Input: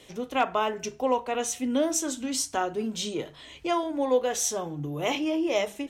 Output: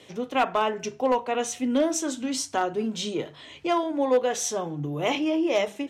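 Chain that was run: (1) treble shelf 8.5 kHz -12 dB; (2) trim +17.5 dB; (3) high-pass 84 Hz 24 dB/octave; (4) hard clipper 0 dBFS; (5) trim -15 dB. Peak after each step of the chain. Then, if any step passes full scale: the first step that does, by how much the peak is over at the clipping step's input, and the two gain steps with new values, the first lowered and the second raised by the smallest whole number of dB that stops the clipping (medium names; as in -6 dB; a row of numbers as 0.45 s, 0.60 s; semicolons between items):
-14.0 dBFS, +3.5 dBFS, +5.0 dBFS, 0.0 dBFS, -15.0 dBFS; step 2, 5.0 dB; step 2 +12.5 dB, step 5 -10 dB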